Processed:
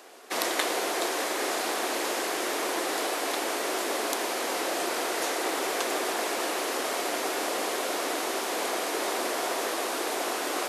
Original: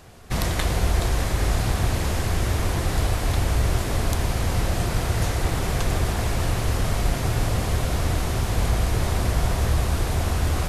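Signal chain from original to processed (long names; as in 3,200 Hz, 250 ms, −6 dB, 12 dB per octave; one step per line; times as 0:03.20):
Butterworth high-pass 300 Hz 36 dB per octave
level +1 dB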